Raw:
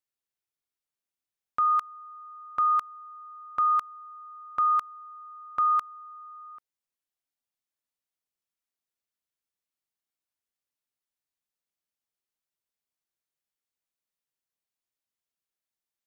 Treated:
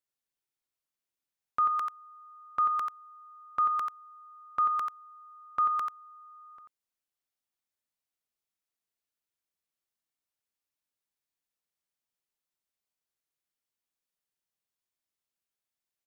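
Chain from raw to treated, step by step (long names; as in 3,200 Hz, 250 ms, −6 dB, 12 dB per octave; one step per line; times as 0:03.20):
single-tap delay 89 ms −6 dB
level −1.5 dB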